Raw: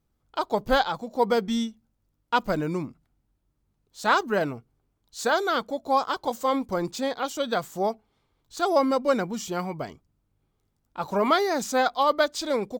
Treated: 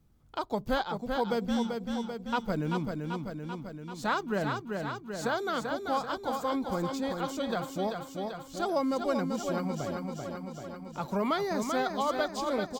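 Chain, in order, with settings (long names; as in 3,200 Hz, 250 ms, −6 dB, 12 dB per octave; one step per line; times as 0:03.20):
bass and treble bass +9 dB, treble 0 dB
repeating echo 388 ms, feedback 56%, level −6 dB
multiband upward and downward compressor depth 40%
level −8 dB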